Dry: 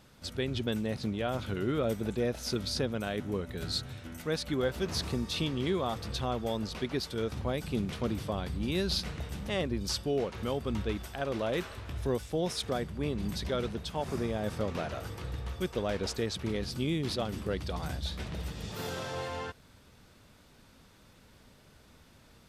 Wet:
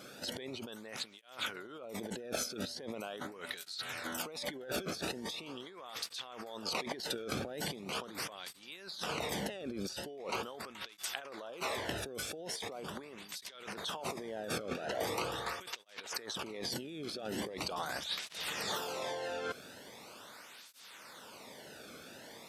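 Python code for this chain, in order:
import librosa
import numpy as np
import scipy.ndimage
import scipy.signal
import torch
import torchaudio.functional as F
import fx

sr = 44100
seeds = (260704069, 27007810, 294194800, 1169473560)

y = fx.highpass(x, sr, hz=260.0, slope=6)
y = fx.over_compress(y, sr, threshold_db=-44.0, ratio=-1.0)
y = fx.flanger_cancel(y, sr, hz=0.41, depth_ms=1.1)
y = y * librosa.db_to_amplitude(6.5)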